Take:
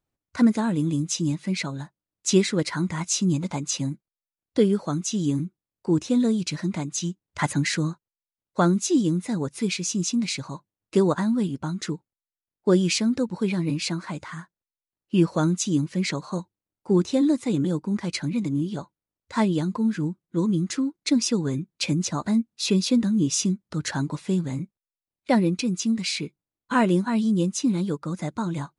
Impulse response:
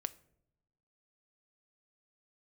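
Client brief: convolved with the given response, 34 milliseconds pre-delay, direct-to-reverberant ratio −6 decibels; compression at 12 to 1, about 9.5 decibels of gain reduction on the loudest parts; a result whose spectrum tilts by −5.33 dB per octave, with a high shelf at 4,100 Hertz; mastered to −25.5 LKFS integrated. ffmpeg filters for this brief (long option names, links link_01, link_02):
-filter_complex "[0:a]highshelf=frequency=4100:gain=-7,acompressor=threshold=-23dB:ratio=12,asplit=2[link_01][link_02];[1:a]atrim=start_sample=2205,adelay=34[link_03];[link_02][link_03]afir=irnorm=-1:irlink=0,volume=7dB[link_04];[link_01][link_04]amix=inputs=2:normalize=0,volume=-3dB"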